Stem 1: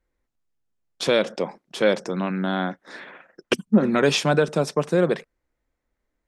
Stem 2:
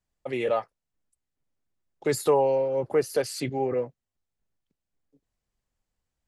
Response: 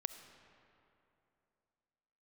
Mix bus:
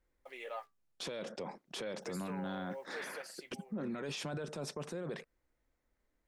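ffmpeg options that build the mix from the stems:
-filter_complex "[0:a]acompressor=threshold=-26dB:ratio=6,volume=-2.5dB[link_01];[1:a]highpass=770,acrusher=bits=9:mix=0:aa=0.000001,flanger=delay=4.3:depth=6.4:regen=-67:speed=0.68:shape=sinusoidal,volume=-7.5dB,afade=type=out:start_time=2.99:duration=0.75:silence=0.237137[link_02];[link_01][link_02]amix=inputs=2:normalize=0,alimiter=level_in=8.5dB:limit=-24dB:level=0:latency=1:release=12,volume=-8.5dB"

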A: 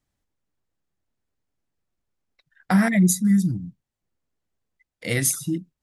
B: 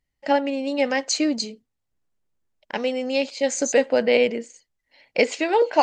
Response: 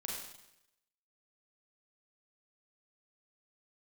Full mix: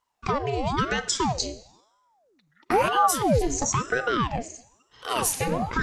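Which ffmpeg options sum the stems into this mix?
-filter_complex "[0:a]volume=-1.5dB,asplit=3[link_01][link_02][link_03];[link_02]volume=-18dB[link_04];[1:a]equalizer=frequency=400:width_type=o:width=0.67:gain=5,equalizer=frequency=1000:width_type=o:width=0.67:gain=11,equalizer=frequency=6300:width_type=o:width=0.67:gain=8,alimiter=limit=-8dB:level=0:latency=1:release=112,acompressor=threshold=-20dB:ratio=6,volume=0dB,asplit=2[link_05][link_06];[link_06]volume=-11dB[link_07];[link_03]apad=whole_len=257010[link_08];[link_05][link_08]sidechaincompress=threshold=-31dB:ratio=8:attack=16:release=142[link_09];[2:a]atrim=start_sample=2205[link_10];[link_04][link_07]amix=inputs=2:normalize=0[link_11];[link_11][link_10]afir=irnorm=-1:irlink=0[link_12];[link_01][link_09][link_12]amix=inputs=3:normalize=0,aeval=exprs='val(0)*sin(2*PI*580*n/s+580*0.75/1*sin(2*PI*1*n/s))':channel_layout=same"

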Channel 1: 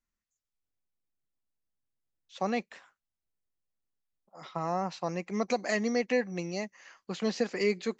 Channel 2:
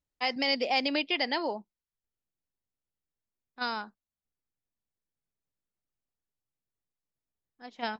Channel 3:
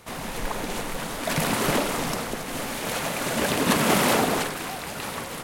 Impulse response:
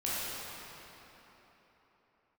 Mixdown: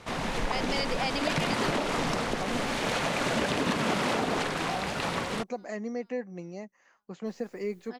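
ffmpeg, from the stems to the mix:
-filter_complex "[0:a]equalizer=frequency=3900:width=0.6:gain=-12.5,volume=-4.5dB[link_01];[1:a]acompressor=mode=upward:threshold=-41dB:ratio=2.5,adelay=300,volume=-2dB,asplit=3[link_02][link_03][link_04];[link_02]atrim=end=5.31,asetpts=PTS-STARTPTS,afade=type=out:start_time=5.306:duration=0.004:curve=hsin[link_05];[link_03]atrim=start=5.31:end=7.26,asetpts=PTS-STARTPTS,volume=0[link_06];[link_04]atrim=start=7.26,asetpts=PTS-STARTPTS,afade=type=in:duration=0.004:curve=hsin[link_07];[link_05][link_06][link_07]concat=n=3:v=0:a=1,asplit=2[link_08][link_09];[link_09]volume=-17.5dB[link_10];[2:a]lowpass=5700,volume=2dB[link_11];[link_10]aecho=0:1:416|832|1248|1664|2080|2496|2912|3328:1|0.56|0.314|0.176|0.0983|0.0551|0.0308|0.0173[link_12];[link_01][link_08][link_11][link_12]amix=inputs=4:normalize=0,acompressor=threshold=-24dB:ratio=10"

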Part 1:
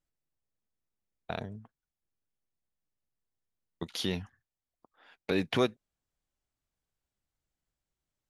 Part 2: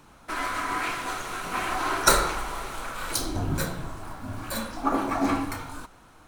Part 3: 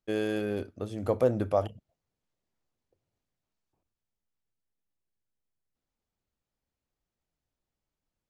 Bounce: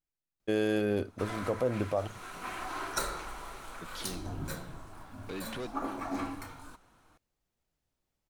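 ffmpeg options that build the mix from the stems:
ffmpeg -i stem1.wav -i stem2.wav -i stem3.wav -filter_complex "[0:a]asoftclip=type=tanh:threshold=-27.5dB,volume=-7dB,asplit=2[link_01][link_02];[1:a]adelay=900,volume=-10.5dB[link_03];[2:a]adelay=400,volume=3dB[link_04];[link_02]apad=whole_len=383447[link_05];[link_04][link_05]sidechaincompress=threshold=-45dB:ratio=8:attack=16:release=334[link_06];[link_01][link_03][link_06]amix=inputs=3:normalize=0,alimiter=limit=-19dB:level=0:latency=1:release=350" out.wav

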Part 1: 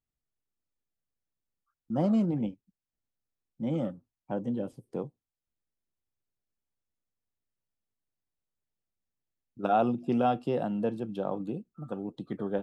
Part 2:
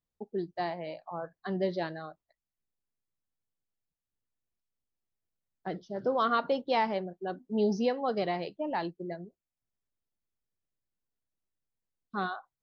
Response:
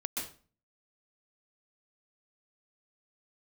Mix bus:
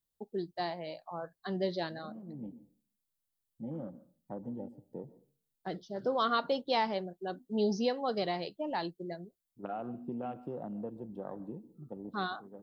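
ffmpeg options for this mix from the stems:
-filter_complex "[0:a]afwtdn=0.0112,acompressor=threshold=-28dB:ratio=6,volume=-8.5dB,asplit=2[link_01][link_02];[link_02]volume=-17.5dB[link_03];[1:a]aexciter=amount=2.7:drive=2.2:freq=3300,volume=-2.5dB,asplit=2[link_04][link_05];[link_05]apad=whole_len=556700[link_06];[link_01][link_06]sidechaincompress=threshold=-52dB:ratio=8:attack=16:release=444[link_07];[2:a]atrim=start_sample=2205[link_08];[link_03][link_08]afir=irnorm=-1:irlink=0[link_09];[link_07][link_04][link_09]amix=inputs=3:normalize=0"

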